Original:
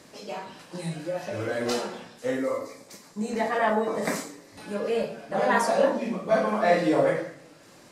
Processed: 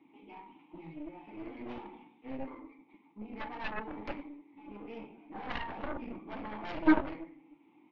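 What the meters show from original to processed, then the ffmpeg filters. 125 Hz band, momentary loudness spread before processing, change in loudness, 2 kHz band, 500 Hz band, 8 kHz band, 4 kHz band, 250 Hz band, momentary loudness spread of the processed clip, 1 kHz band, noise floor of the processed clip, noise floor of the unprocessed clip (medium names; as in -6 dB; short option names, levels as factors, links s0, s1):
-14.5 dB, 16 LU, -11.0 dB, -10.5 dB, -19.0 dB, under -35 dB, -13.0 dB, -5.0 dB, 21 LU, -13.0 dB, -64 dBFS, -52 dBFS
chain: -filter_complex "[0:a]highpass=48,aresample=8000,aresample=44100,asplit=3[s0][s1][s2];[s0]bandpass=f=300:t=q:w=8,volume=1[s3];[s1]bandpass=f=870:t=q:w=8,volume=0.501[s4];[s2]bandpass=f=2240:t=q:w=8,volume=0.355[s5];[s3][s4][s5]amix=inputs=3:normalize=0,aeval=exprs='0.126*(cos(1*acos(clip(val(0)/0.126,-1,1)))-cos(1*PI/2))+0.02*(cos(6*acos(clip(val(0)/0.126,-1,1)))-cos(6*PI/2))+0.0316*(cos(7*acos(clip(val(0)/0.126,-1,1)))-cos(7*PI/2))':c=same,volume=1.41" -ar 48000 -c:a libvorbis -b:a 64k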